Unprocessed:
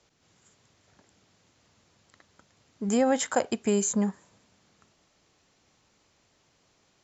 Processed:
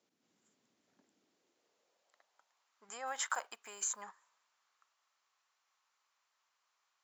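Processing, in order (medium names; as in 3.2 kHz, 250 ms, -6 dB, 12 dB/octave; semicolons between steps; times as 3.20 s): 3.07–4.03 s: block-companded coder 7-bit; peak limiter -22.5 dBFS, peak gain reduction 11 dB; high-pass sweep 240 Hz -> 1.1 kHz, 1.06–2.75 s; upward expansion 1.5:1, over -54 dBFS; trim -2.5 dB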